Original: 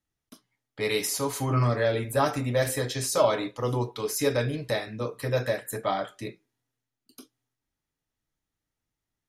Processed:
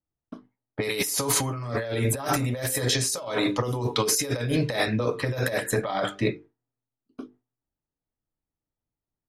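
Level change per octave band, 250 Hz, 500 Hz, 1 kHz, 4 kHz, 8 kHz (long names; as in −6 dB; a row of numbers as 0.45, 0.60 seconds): +3.5, −1.5, −1.0, +5.0, +6.0 decibels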